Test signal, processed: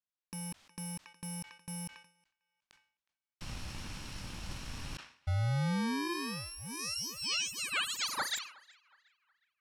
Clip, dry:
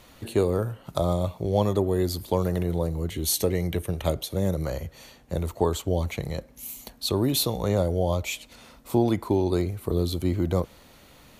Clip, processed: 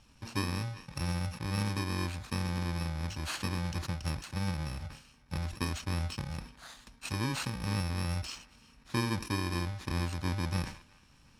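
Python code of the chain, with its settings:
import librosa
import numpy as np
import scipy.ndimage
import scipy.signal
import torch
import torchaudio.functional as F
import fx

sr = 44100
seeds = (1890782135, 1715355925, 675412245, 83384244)

y = fx.bit_reversed(x, sr, seeds[0], block=64)
y = scipy.signal.sosfilt(scipy.signal.butter(2, 5100.0, 'lowpass', fs=sr, output='sos'), y)
y = fx.peak_eq(y, sr, hz=420.0, db=-9.0, octaves=0.65)
y = fx.echo_banded(y, sr, ms=365, feedback_pct=42, hz=1800.0, wet_db=-22)
y = fx.sustainer(y, sr, db_per_s=120.0)
y = F.gain(torch.from_numpy(y), -5.5).numpy()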